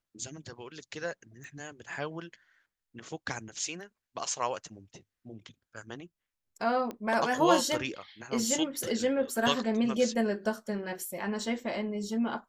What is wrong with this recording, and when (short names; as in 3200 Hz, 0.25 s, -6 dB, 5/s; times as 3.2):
1.44 pop
6.91 pop -24 dBFS